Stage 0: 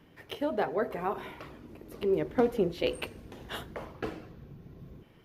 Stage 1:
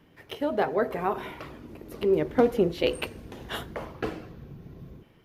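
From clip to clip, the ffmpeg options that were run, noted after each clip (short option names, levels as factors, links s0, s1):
-af "dynaudnorm=f=120:g=7:m=1.68"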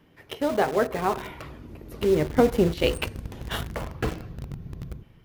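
-filter_complex "[0:a]asubboost=boost=3.5:cutoff=170,asplit=2[s0][s1];[s1]acrusher=bits=4:mix=0:aa=0.000001,volume=0.422[s2];[s0][s2]amix=inputs=2:normalize=0"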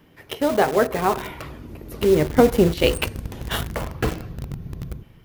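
-af "crystalizer=i=0.5:c=0,volume=1.68"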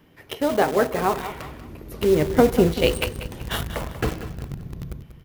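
-af "aecho=1:1:189|378|567:0.251|0.0829|0.0274,volume=0.841"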